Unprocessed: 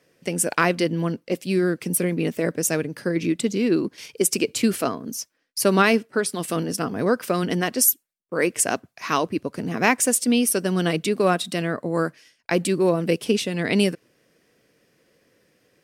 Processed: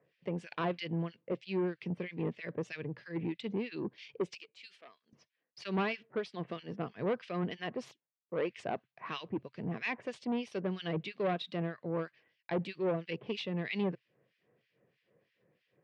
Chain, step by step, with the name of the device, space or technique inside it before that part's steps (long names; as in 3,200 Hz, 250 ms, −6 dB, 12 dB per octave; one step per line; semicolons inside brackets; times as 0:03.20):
guitar amplifier with harmonic tremolo (two-band tremolo in antiphase 3.1 Hz, depth 100%, crossover 1,700 Hz; soft clipping −20 dBFS, distortion −10 dB; loudspeaker in its box 96–3,600 Hz, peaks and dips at 130 Hz +6 dB, 270 Hz −8 dB, 1,400 Hz −6 dB)
0:04.35–0:05.13: first difference
level −5.5 dB